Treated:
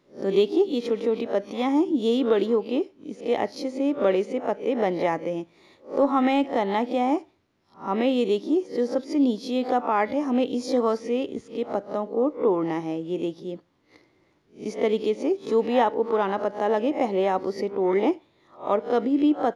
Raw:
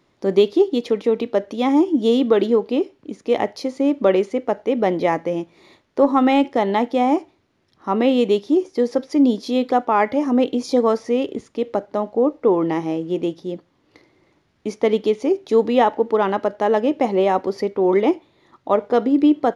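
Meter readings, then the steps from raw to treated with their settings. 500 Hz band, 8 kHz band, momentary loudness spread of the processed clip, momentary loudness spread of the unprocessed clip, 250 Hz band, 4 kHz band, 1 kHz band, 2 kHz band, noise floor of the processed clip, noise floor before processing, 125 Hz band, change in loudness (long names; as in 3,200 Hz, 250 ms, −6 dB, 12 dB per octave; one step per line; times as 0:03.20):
−5.0 dB, can't be measured, 8 LU, 8 LU, −5.5 dB, −4.5 dB, −5.0 dB, −4.5 dB, −64 dBFS, −64 dBFS, −5.5 dB, −5.5 dB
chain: peak hold with a rise ahead of every peak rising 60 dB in 0.30 s
level −6 dB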